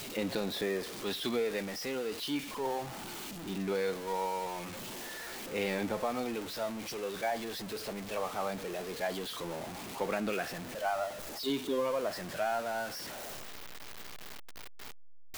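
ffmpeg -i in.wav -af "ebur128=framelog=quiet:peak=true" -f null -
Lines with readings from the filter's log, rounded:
Integrated loudness:
  I:         -35.7 LUFS
  Threshold: -46.2 LUFS
Loudness range:
  LRA:         2.2 LU
  Threshold: -56.0 LUFS
  LRA low:   -36.9 LUFS
  LRA high:  -34.7 LUFS
True peak:
  Peak:      -19.8 dBFS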